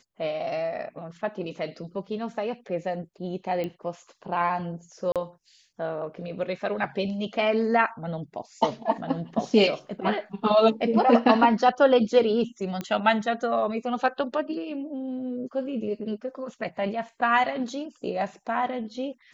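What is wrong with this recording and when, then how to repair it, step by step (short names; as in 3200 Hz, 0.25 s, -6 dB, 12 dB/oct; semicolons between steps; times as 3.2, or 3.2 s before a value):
3.64 pop -20 dBFS
5.12–5.16 gap 37 ms
12.81 pop -18 dBFS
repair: de-click; interpolate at 5.12, 37 ms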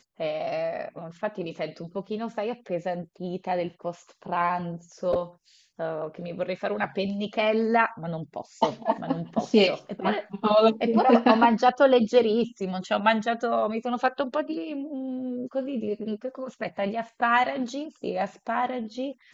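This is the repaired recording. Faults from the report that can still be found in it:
3.64 pop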